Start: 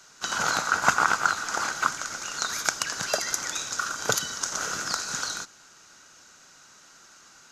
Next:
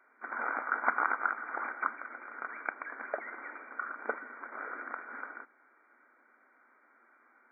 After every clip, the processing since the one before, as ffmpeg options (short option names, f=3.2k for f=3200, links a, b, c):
-af "afftfilt=real='re*between(b*sr/4096,220,2400)':imag='im*between(b*sr/4096,220,2400)':win_size=4096:overlap=0.75,volume=-7.5dB"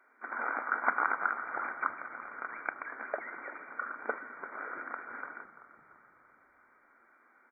-filter_complex "[0:a]asplit=6[a][b][c][d][e][f];[b]adelay=339,afreqshift=-49,volume=-15dB[g];[c]adelay=678,afreqshift=-98,volume=-20.2dB[h];[d]adelay=1017,afreqshift=-147,volume=-25.4dB[i];[e]adelay=1356,afreqshift=-196,volume=-30.6dB[j];[f]adelay=1695,afreqshift=-245,volume=-35.8dB[k];[a][g][h][i][j][k]amix=inputs=6:normalize=0"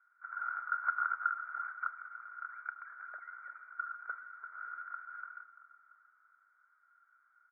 -af "bandpass=f=1.4k:t=q:w=14:csg=0,volume=1.5dB"